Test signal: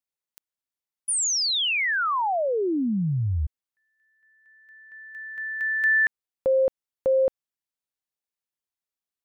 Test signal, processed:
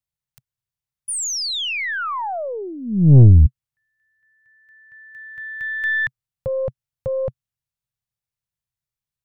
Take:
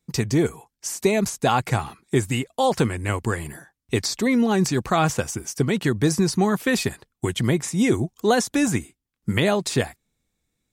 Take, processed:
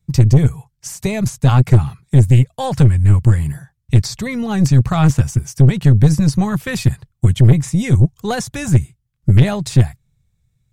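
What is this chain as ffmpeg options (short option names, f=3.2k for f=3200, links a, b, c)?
-af "lowshelf=f=190:t=q:w=3:g=13.5,aeval=exprs='(tanh(2*val(0)+0.45)-tanh(0.45))/2':c=same,volume=1.5dB"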